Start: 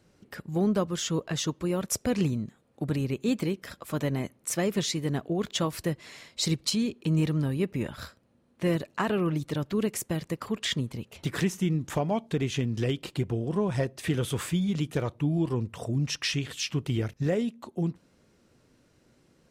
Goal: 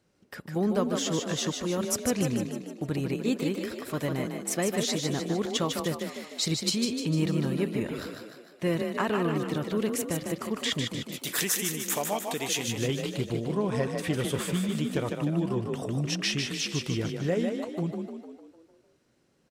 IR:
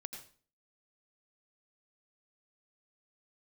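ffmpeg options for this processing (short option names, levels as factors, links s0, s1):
-filter_complex "[0:a]lowshelf=f=160:g=-5.5,agate=range=0.501:threshold=0.00251:ratio=16:detection=peak,asplit=3[s0][s1][s2];[s0]afade=t=out:st=11.12:d=0.02[s3];[s1]aemphasis=mode=production:type=riaa,afade=t=in:st=11.12:d=0.02,afade=t=out:st=12.67:d=0.02[s4];[s2]afade=t=in:st=12.67:d=0.02[s5];[s3][s4][s5]amix=inputs=3:normalize=0,asplit=2[s6][s7];[s7]asplit=7[s8][s9][s10][s11][s12][s13][s14];[s8]adelay=151,afreqshift=32,volume=0.562[s15];[s9]adelay=302,afreqshift=64,volume=0.299[s16];[s10]adelay=453,afreqshift=96,volume=0.158[s17];[s11]adelay=604,afreqshift=128,volume=0.0841[s18];[s12]adelay=755,afreqshift=160,volume=0.0442[s19];[s13]adelay=906,afreqshift=192,volume=0.0234[s20];[s14]adelay=1057,afreqshift=224,volume=0.0124[s21];[s15][s16][s17][s18][s19][s20][s21]amix=inputs=7:normalize=0[s22];[s6][s22]amix=inputs=2:normalize=0"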